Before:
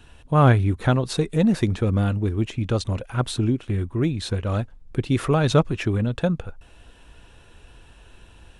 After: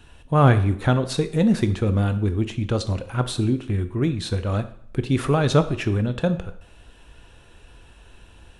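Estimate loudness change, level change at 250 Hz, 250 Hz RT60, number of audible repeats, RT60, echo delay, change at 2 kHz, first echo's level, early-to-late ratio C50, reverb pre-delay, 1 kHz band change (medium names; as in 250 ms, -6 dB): +0.5 dB, +0.5 dB, 0.60 s, no echo, 0.60 s, no echo, +0.5 dB, no echo, 14.0 dB, 17 ms, +0.5 dB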